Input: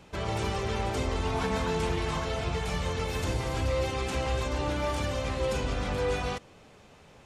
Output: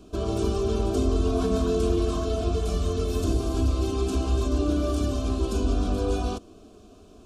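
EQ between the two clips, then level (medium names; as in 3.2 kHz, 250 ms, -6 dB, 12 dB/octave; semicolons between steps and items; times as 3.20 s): Butterworth band-stop 860 Hz, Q 3.2; resonant low shelf 790 Hz +7.5 dB, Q 1.5; static phaser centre 530 Hz, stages 6; +2.5 dB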